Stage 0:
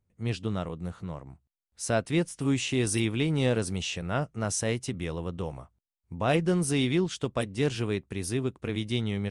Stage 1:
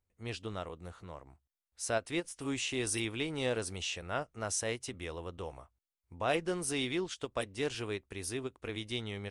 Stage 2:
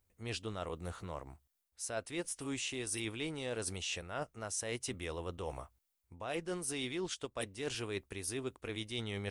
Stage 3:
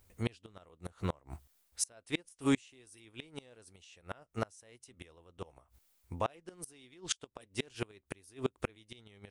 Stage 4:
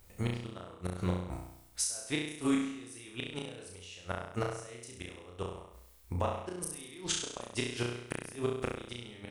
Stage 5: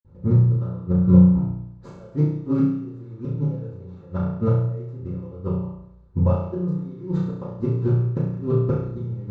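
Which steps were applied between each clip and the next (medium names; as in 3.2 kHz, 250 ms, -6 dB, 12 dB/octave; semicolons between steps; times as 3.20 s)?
peaking EQ 160 Hz -13 dB 1.5 oct; endings held to a fixed fall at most 560 dB/s; trim -3.5 dB
treble shelf 8.7 kHz +8 dB; reverse; compression 6:1, threshold -42 dBFS, peak gain reduction 16 dB; reverse; trim +5.5 dB
inverted gate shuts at -30 dBFS, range -31 dB; trim +12 dB
compression 4:1, threshold -37 dBFS, peak gain reduction 11 dB; flutter echo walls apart 5.7 m, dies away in 0.76 s; trim +5.5 dB
median filter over 15 samples; reverberation RT60 0.30 s, pre-delay 47 ms; trim +8.5 dB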